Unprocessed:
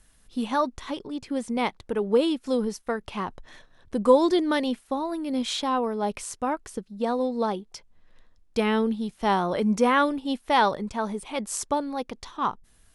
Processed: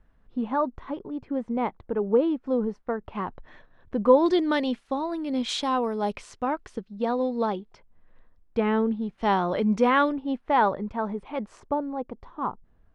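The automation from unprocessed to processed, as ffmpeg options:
-af "asetnsamples=n=441:p=0,asendcmd='3.15 lowpass f 2100;4.26 lowpass f 4600;5.49 lowpass f 8400;6.13 lowpass f 3700;7.74 lowpass f 1800;9.18 lowpass f 3600;10.12 lowpass f 1700;11.6 lowpass f 1000',lowpass=1.3k"

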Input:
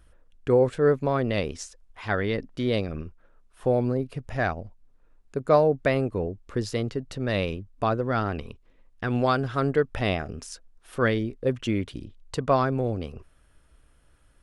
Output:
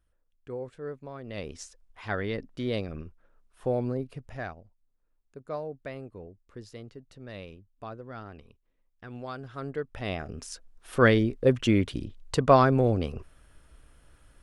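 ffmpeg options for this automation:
-af "volume=14.5dB,afade=t=in:st=1.23:d=0.4:silence=0.251189,afade=t=out:st=4.01:d=0.62:silence=0.281838,afade=t=in:st=9.26:d=0.76:silence=0.446684,afade=t=in:st=10.02:d=0.99:silence=0.237137"

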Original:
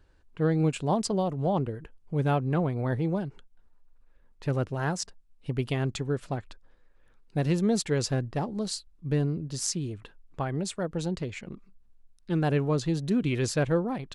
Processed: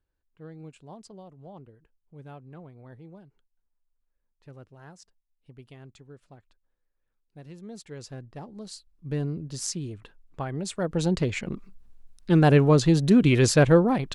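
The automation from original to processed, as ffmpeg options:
-af "volume=8dB,afade=t=in:st=7.55:d=1.15:silence=0.316228,afade=t=in:st=8.7:d=0.63:silence=0.421697,afade=t=in:st=10.61:d=0.65:silence=0.334965"

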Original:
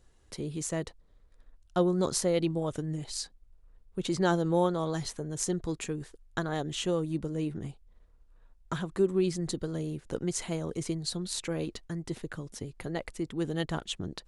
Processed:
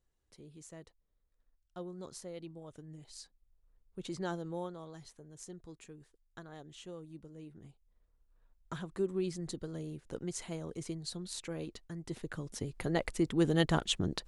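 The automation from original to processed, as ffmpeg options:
-af "volume=11dB,afade=t=in:st=2.64:d=1.43:silence=0.398107,afade=t=out:st=4.07:d=0.83:silence=0.421697,afade=t=in:st=7.51:d=1.32:silence=0.316228,afade=t=in:st=11.96:d=1.15:silence=0.281838"

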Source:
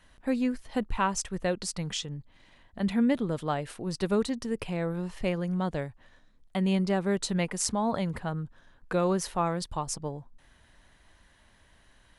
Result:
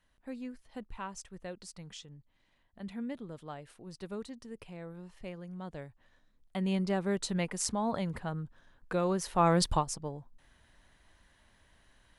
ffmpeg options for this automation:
-af "volume=8.5dB,afade=t=in:st=5.54:d=1.38:silence=0.316228,afade=t=in:st=9.28:d=0.43:silence=0.237137,afade=t=out:st=9.71:d=0.14:silence=0.237137"

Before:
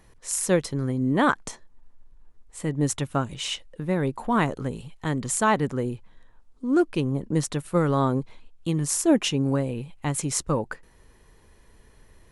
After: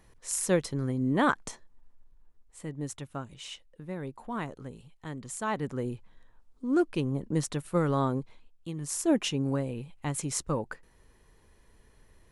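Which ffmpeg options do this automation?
-af "volume=11dB,afade=t=out:st=1.49:d=1.39:silence=0.375837,afade=t=in:st=5.39:d=0.53:silence=0.398107,afade=t=out:st=7.96:d=0.79:silence=0.398107,afade=t=in:st=8.75:d=0.33:silence=0.446684"

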